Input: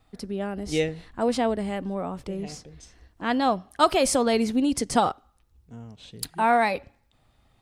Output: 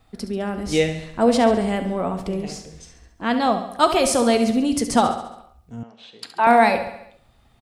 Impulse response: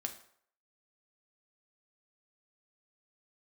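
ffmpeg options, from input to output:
-filter_complex "[0:a]aecho=1:1:69|138|207|276|345|414:0.282|0.161|0.0916|0.0522|0.0298|0.017,asplit=2[link_01][link_02];[1:a]atrim=start_sample=2205[link_03];[link_02][link_03]afir=irnorm=-1:irlink=0,volume=1.5dB[link_04];[link_01][link_04]amix=inputs=2:normalize=0,dynaudnorm=framelen=230:gausssize=13:maxgain=11.5dB,asettb=1/sr,asplit=3[link_05][link_06][link_07];[link_05]atrim=end=5.834[link_08];[link_06]atrim=start=5.83:end=6.47,asetpts=PTS-STARTPTS,afade=type=in:duration=0.004:curve=qsin,afade=type=out:start_time=0.636:duration=0.004:curve=qsin,highpass=500,lowpass=3800[link_09];[link_07]atrim=start=6.466[link_10];[link_08][link_09]acrossfade=duration=0.004:curve1=hsin:curve2=qsin[link_11];[link_11][link_10]acrossfade=duration=0.004:curve1=qsin:curve2=hsin,volume=-1dB"

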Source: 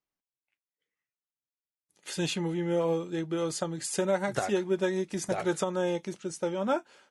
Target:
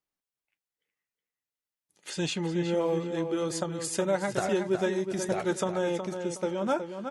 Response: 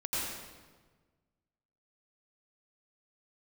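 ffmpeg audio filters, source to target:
-filter_complex "[0:a]asettb=1/sr,asplit=3[link_01][link_02][link_03];[link_01]atrim=end=2.104[link_04];[link_02]atrim=start=2.1:end=2.75,asetpts=PTS-STARTPTS,afade=type=in:duration=0.004:curve=qsin,afade=type=out:start_time=0.646:duration=0.004:curve=qsin,lowpass=frequency=8900:width=0.5412,lowpass=frequency=8900:width=1.3066[link_05];[link_03]atrim=start=2.746[link_06];[link_04][link_05]acrossfade=duration=0.004:curve1=hsin:curve2=qsin[link_07];[link_07][link_06]acrossfade=duration=0.004:curve1=qsin:curve2=hsin,asplit=2[link_08][link_09];[link_09]adelay=368,lowpass=frequency=4000:poles=1,volume=-7dB,asplit=2[link_10][link_11];[link_11]adelay=368,lowpass=frequency=4000:poles=1,volume=0.29,asplit=2[link_12][link_13];[link_13]adelay=368,lowpass=frequency=4000:poles=1,volume=0.29,asplit=2[link_14][link_15];[link_15]adelay=368,lowpass=frequency=4000:poles=1,volume=0.29[link_16];[link_10][link_12][link_14][link_16]amix=inputs=4:normalize=0[link_17];[link_08][link_17]amix=inputs=2:normalize=0"

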